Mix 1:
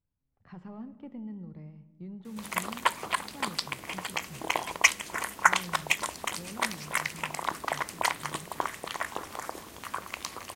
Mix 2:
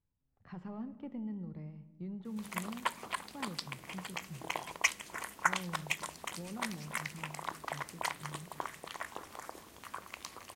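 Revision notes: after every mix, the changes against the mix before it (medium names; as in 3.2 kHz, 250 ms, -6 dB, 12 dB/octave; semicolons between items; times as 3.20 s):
background -8.5 dB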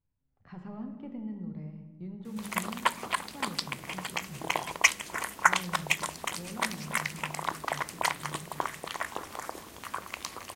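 speech: send +9.0 dB; background +7.5 dB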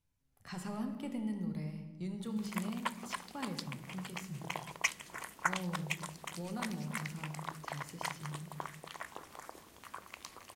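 speech: remove tape spacing loss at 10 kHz 42 dB; background -10.5 dB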